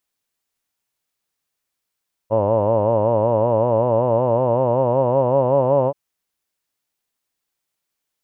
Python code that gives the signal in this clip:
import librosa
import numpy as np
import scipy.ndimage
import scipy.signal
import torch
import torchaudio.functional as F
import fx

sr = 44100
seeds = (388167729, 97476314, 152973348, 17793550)

y = fx.formant_vowel(sr, seeds[0], length_s=3.63, hz=105.0, glide_st=4.5, vibrato_hz=5.3, vibrato_st=1.15, f1_hz=560.0, f2_hz=960.0, f3_hz=2800.0)